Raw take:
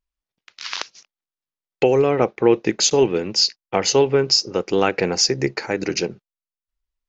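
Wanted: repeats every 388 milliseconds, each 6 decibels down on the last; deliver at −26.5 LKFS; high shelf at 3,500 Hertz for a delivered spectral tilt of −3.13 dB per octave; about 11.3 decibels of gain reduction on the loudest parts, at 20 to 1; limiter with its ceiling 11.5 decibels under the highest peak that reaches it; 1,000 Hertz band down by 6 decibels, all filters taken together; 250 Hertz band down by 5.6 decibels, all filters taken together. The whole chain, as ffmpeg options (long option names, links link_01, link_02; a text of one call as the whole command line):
ffmpeg -i in.wav -af "equalizer=frequency=250:width_type=o:gain=-8,equalizer=frequency=1000:width_type=o:gain=-8.5,highshelf=frequency=3500:gain=5.5,acompressor=threshold=-20dB:ratio=20,alimiter=limit=-18.5dB:level=0:latency=1,aecho=1:1:388|776|1164|1552|1940|2328:0.501|0.251|0.125|0.0626|0.0313|0.0157,volume=2.5dB" out.wav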